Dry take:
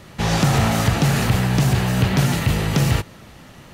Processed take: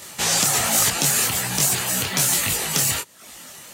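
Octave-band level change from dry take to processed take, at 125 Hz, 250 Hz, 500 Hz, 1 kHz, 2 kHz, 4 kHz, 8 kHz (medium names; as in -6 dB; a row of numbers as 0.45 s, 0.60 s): -15.0 dB, -11.5 dB, -6.0 dB, -3.5 dB, -0.5 dB, +4.0 dB, +12.5 dB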